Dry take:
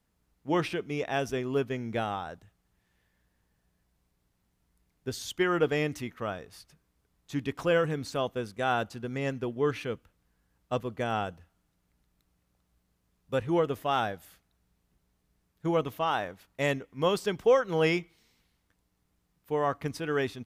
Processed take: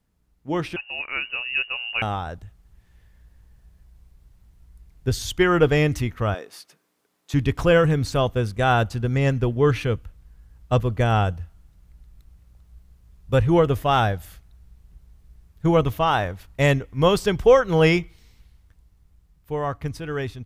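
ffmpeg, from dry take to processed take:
-filter_complex "[0:a]asettb=1/sr,asplit=3[a][b][c];[a]atrim=end=0.764[d];[b]atrim=start=0.76:end=2.02,asetpts=PTS-STARTPTS,afade=t=in:d=0.004:c=qsin,afade=t=out:st=1.256:d=0.004:c=qsin,lowpass=f=2.6k:t=q:w=0.5098,lowpass=f=2.6k:t=q:w=0.6013,lowpass=f=2.6k:t=q:w=0.9,lowpass=f=2.6k:t=q:w=2.563,afreqshift=-3000[e];[c]atrim=start=2.016[f];[d][e]acrossfade=d=0.004:c1=hsin:c2=qsin[g];[g][f]acrossfade=d=0.004:c1=qsin:c2=hsin,asettb=1/sr,asplit=3[h][i][j];[h]atrim=end=6.344[k];[i]atrim=start=6.34:end=7.34,asetpts=PTS-STARTPTS,afade=t=in:d=0.004:c=qsin,afade=t=out:st=0.996:d=0.004:c=qsin,highpass=f=260:w=0.5412,highpass=f=260:w=1.3066[l];[j]atrim=start=7.336[m];[k][l]acrossfade=d=0.004:c1=hsin:c2=qsin[n];[n][m]acrossfade=d=0.004:c1=qsin:c2=hsin,asubboost=boost=5:cutoff=91,dynaudnorm=f=240:g=17:m=8dB,lowshelf=f=250:g=7"

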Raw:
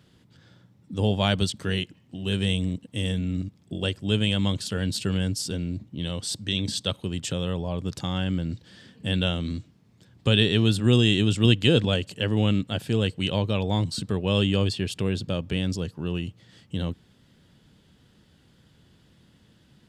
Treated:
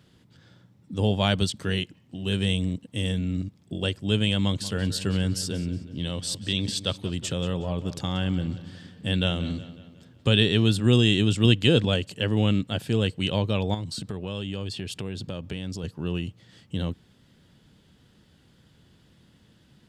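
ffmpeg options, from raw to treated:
-filter_complex "[0:a]asettb=1/sr,asplit=3[a][b][c];[a]atrim=end=4.434[d];[b]atrim=start=4.43:end=10.32,asetpts=PTS-STARTPTS,afade=t=in:d=0.004:c=qsin,afade=t=out:st=5.886:d=0.004:c=qsin,asplit=2[e][f];[f]adelay=183,lowpass=f=4.8k:p=1,volume=-14dB,asplit=2[g][h];[h]adelay=183,lowpass=f=4.8k:p=1,volume=0.51,asplit=2[i][j];[j]adelay=183,lowpass=f=4.8k:p=1,volume=0.51,asplit=2[k][l];[l]adelay=183,lowpass=f=4.8k:p=1,volume=0.51,asplit=2[m][n];[n]adelay=183,lowpass=f=4.8k:p=1,volume=0.51[o];[e][g][i][k][m][o]amix=inputs=6:normalize=0,atrim=end_sample=259749[p];[c]atrim=start=10.316[q];[d][p]acrossfade=d=0.004:c1=hsin:c2=qsin[r];[r][q]acrossfade=d=0.004:c1=qsin:c2=hsin,asettb=1/sr,asplit=3[s][t][u];[s]atrim=end=13.744[v];[t]atrim=start=13.74:end=15.84,asetpts=PTS-STARTPTS,afade=t=in:d=0.004:c=qsin,afade=t=out:st=2.096:d=0.004:c=qsin,acompressor=threshold=-30dB:ratio=3:attack=3.2:release=140:knee=1:detection=peak[w];[u]atrim=start=15.836[x];[v][w]acrossfade=d=0.004:c1=hsin:c2=qsin[y];[y][x]acrossfade=d=0.004:c1=qsin:c2=hsin"

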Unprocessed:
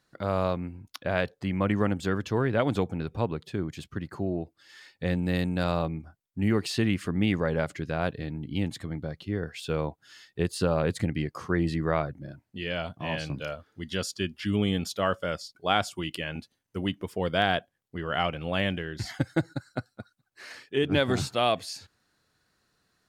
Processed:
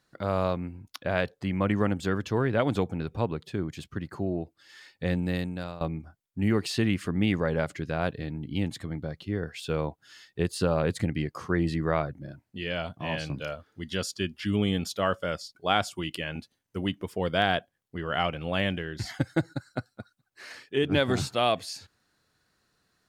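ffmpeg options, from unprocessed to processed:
-filter_complex "[0:a]asplit=2[a][b];[a]atrim=end=5.81,asetpts=PTS-STARTPTS,afade=t=out:st=5.18:d=0.63:silence=0.133352[c];[b]atrim=start=5.81,asetpts=PTS-STARTPTS,afade=t=in:d=0.004:c=hsin:silence=0.133352[d];[c][d]concat=n=2:v=0:a=1"

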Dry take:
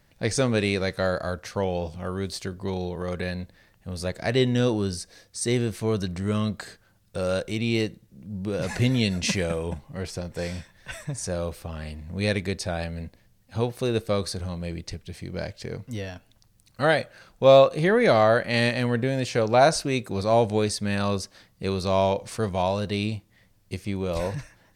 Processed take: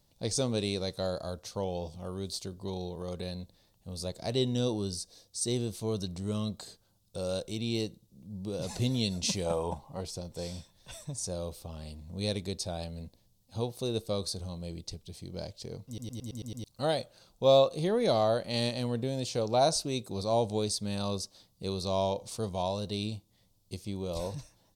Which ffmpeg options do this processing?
-filter_complex "[0:a]asettb=1/sr,asplit=3[a][b][c];[a]atrim=end=9.464[d];[b]atrim=start=9.46:end=10.01,asetpts=PTS-STARTPTS,afade=t=in:d=0.004:c=qsin,afade=t=out:st=0.546:d=0.004:c=qsin,equalizer=f=910:t=o:w=1.4:g=13.5[e];[c]atrim=start=10.006[f];[d][e]acrossfade=d=0.004:c1=hsin:c2=qsin[g];[g][f]acrossfade=d=0.004:c1=qsin:c2=hsin,asplit=8[h][i][j][k][l][m][n][o];[h]atrim=end=15.982[p];[i]atrim=start=15.868:end=15.982[q];[j]atrim=start=15.868:end=15.982[r];[k]atrim=start=15.868:end=15.982[s];[l]atrim=start=15.868:end=15.982[t];[m]atrim=start=15.868:end=15.982[u];[n]atrim=start=15.868:end=15.982[v];[o]atrim=start=16.638[w];[p][q]acrossfade=d=0.004:c1=hsin:c2=hsin[x];[x][r]acrossfade=d=0.004:c1=hsin:c2=hsin[y];[y][s]acrossfade=d=0.004:c1=hsin:c2=hsin[z];[z][t]acrossfade=d=0.004:c1=hsin:c2=hsin[aa];[aa][u]acrossfade=d=0.004:c1=hsin:c2=hsin[ab];[ab][v]acrossfade=d=0.004:c1=hsin:c2=hsin[ac];[ac][w]acrossfade=d=0.004:c1=hsin:c2=hsin,firequalizer=gain_entry='entry(920,0);entry(1700,-14);entry(3600,5)':delay=0.05:min_phase=1,volume=-7.5dB"

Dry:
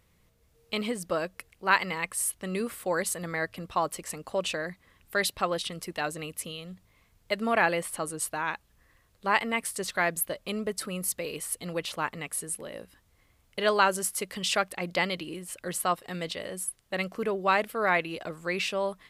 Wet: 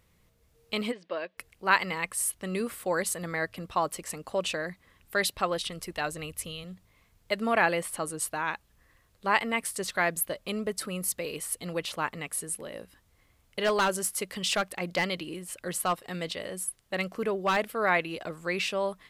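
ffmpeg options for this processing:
-filter_complex "[0:a]asplit=3[a][b][c];[a]afade=t=out:st=0.91:d=0.02[d];[b]highpass=440,equalizer=f=480:t=q:w=4:g=-3,equalizer=f=790:t=q:w=4:g=-7,equalizer=f=1.3k:t=q:w=4:g=-9,lowpass=f=3.7k:w=0.5412,lowpass=f=3.7k:w=1.3066,afade=t=in:st=0.91:d=0.02,afade=t=out:st=1.37:d=0.02[e];[c]afade=t=in:st=1.37:d=0.02[f];[d][e][f]amix=inputs=3:normalize=0,asettb=1/sr,asplit=3[g][h][i];[g]atrim=end=5.304[j];[h]atrim=start=5.3:end=6.64,asetpts=PTS-STARTPTS,afade=t=in:d=0.004:c=qsin,afade=t=out:st=1.336:d=0.004:c=qsin,asubboost=boost=12:cutoff=97[k];[i]atrim=start=6.636[l];[j][k]acrossfade=d=0.004:c1=hsin:c2=qsin[m];[m][l]acrossfade=d=0.004:c1=qsin:c2=hsin,asettb=1/sr,asplit=3[n][o][p];[n]atrim=end=13.624[q];[o]atrim=start=13.62:end=17.57,asetpts=PTS-STARTPTS,afade=t=in:d=0.004:c=qsin,afade=t=out:st=3.946:d=0.004:c=qsin,volume=20dB,asoftclip=hard,volume=-20dB[r];[p]atrim=start=17.566[s];[q][r]acrossfade=d=0.004:c1=hsin:c2=qsin[t];[t][s]acrossfade=d=0.004:c1=qsin:c2=hsin"

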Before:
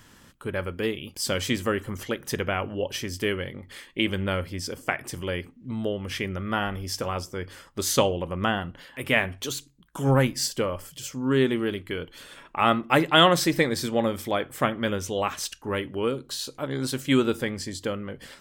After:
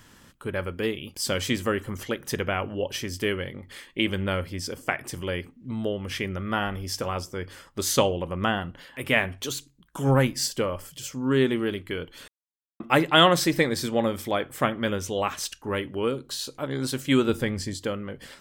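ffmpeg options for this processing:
-filter_complex "[0:a]asettb=1/sr,asplit=3[a][b][c];[a]atrim=end=17.294[d];[b]atrim=start=17.29:end=17.74,asetpts=PTS-STARTPTS,afade=t=in:d=0.004:c=qsin,afade=t=out:st=0.446:d=0.004:c=qsin,lowshelf=f=130:g=10[e];[c]atrim=start=17.736[f];[d][e]acrossfade=d=0.004:c1=hsin:c2=qsin[g];[g][f]acrossfade=d=0.004:c1=qsin:c2=hsin,asplit=3[h][i][j];[h]atrim=end=12.28,asetpts=PTS-STARTPTS,afade=t=out:st=12.276:d=0.004:c=hsin[k];[i]atrim=start=12.28:end=12.8,asetpts=PTS-STARTPTS,volume=0[l];[j]atrim=start=12.8,asetpts=PTS-STARTPTS,afade=t=in:d=0.004:c=hsin[m];[k][l][m]concat=n=3:v=0:a=1"

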